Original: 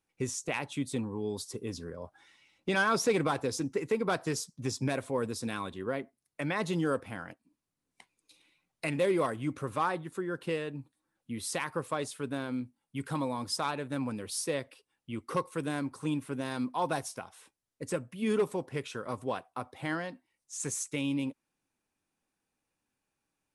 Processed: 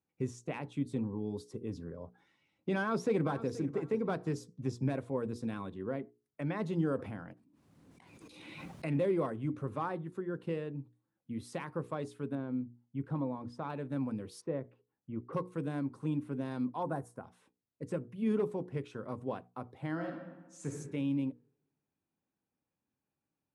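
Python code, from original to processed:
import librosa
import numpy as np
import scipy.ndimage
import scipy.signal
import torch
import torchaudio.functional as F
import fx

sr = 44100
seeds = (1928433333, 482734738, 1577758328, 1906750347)

y = fx.echo_throw(x, sr, start_s=2.78, length_s=0.73, ms=480, feedback_pct=20, wet_db=-14.5)
y = fx.pre_swell(y, sr, db_per_s=26.0, at=(6.8, 9.01))
y = fx.lowpass(y, sr, hz=1400.0, slope=6, at=(12.35, 13.7))
y = fx.lowpass(y, sr, hz=1500.0, slope=12, at=(14.4, 15.32), fade=0.02)
y = fx.band_shelf(y, sr, hz=3600.0, db=-13.0, octaves=1.7, at=(16.83, 17.24))
y = fx.reverb_throw(y, sr, start_s=19.92, length_s=0.78, rt60_s=1.2, drr_db=1.5)
y = scipy.signal.sosfilt(scipy.signal.butter(2, 120.0, 'highpass', fs=sr, output='sos'), y)
y = fx.tilt_eq(y, sr, slope=-3.5)
y = fx.hum_notches(y, sr, base_hz=60, count=8)
y = F.gain(torch.from_numpy(y), -7.0).numpy()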